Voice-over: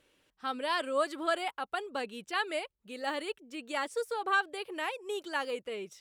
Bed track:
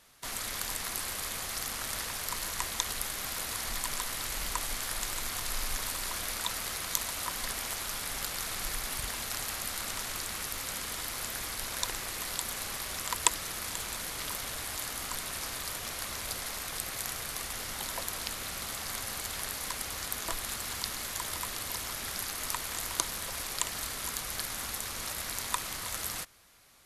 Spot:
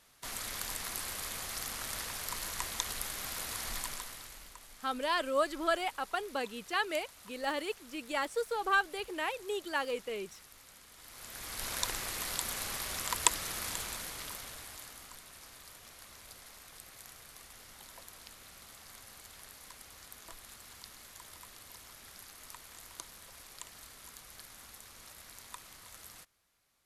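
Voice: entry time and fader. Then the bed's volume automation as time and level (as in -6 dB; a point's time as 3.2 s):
4.40 s, 0.0 dB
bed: 3.79 s -3.5 dB
4.57 s -19.5 dB
10.92 s -19.5 dB
11.67 s -1 dB
13.71 s -1 dB
15.24 s -15.5 dB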